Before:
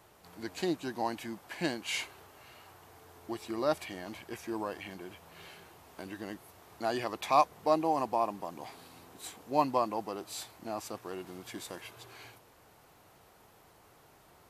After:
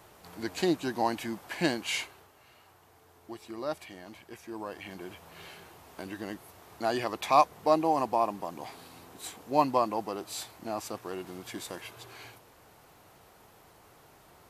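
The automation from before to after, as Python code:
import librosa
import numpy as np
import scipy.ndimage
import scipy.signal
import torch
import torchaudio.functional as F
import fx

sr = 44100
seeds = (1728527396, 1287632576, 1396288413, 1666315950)

y = fx.gain(x, sr, db=fx.line((1.8, 5.0), (2.35, -4.5), (4.49, -4.5), (5.04, 3.0)))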